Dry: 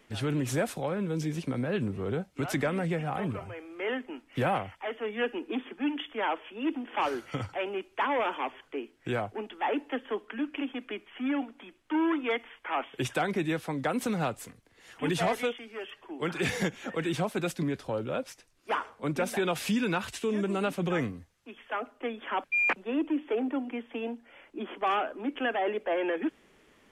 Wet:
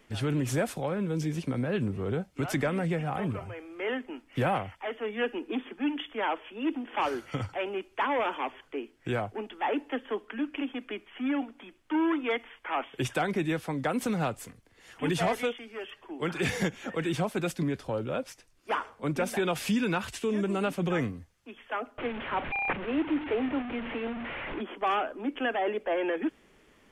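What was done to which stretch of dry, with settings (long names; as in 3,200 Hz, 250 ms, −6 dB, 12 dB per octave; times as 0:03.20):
0:21.98–0:24.61: linear delta modulator 16 kbit/s, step −31 dBFS
whole clip: low-shelf EQ 95 Hz +5.5 dB; notch filter 3,900 Hz, Q 24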